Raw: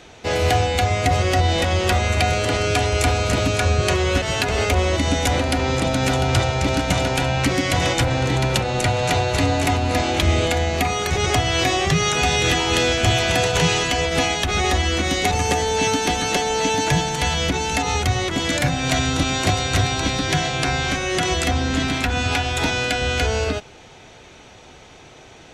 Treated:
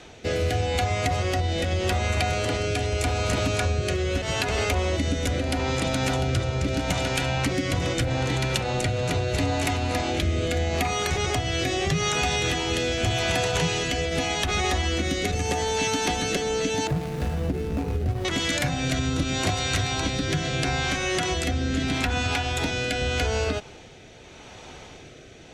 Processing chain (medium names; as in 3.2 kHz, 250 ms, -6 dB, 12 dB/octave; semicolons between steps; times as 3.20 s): 16.87–18.25 s: median filter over 41 samples; rotary cabinet horn 0.8 Hz; compression 3:1, threshold -25 dBFS, peak gain reduction 8.5 dB; trim +2 dB